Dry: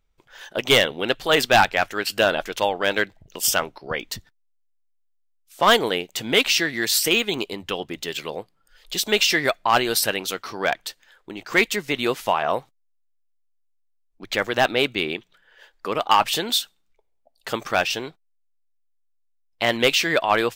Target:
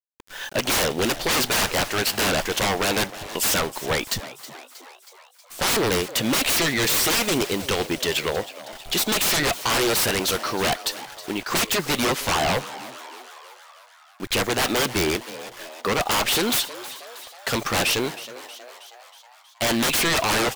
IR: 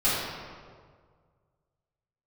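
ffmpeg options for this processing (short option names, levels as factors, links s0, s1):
-filter_complex "[0:a]aeval=exprs='0.0668*(abs(mod(val(0)/0.0668+3,4)-2)-1)':c=same,acrusher=bits=7:mix=0:aa=0.000001,asplit=7[s0][s1][s2][s3][s4][s5][s6];[s1]adelay=318,afreqshift=120,volume=0.168[s7];[s2]adelay=636,afreqshift=240,volume=0.104[s8];[s3]adelay=954,afreqshift=360,volume=0.0646[s9];[s4]adelay=1272,afreqshift=480,volume=0.0398[s10];[s5]adelay=1590,afreqshift=600,volume=0.0248[s11];[s6]adelay=1908,afreqshift=720,volume=0.0153[s12];[s0][s7][s8][s9][s10][s11][s12]amix=inputs=7:normalize=0,volume=2.37"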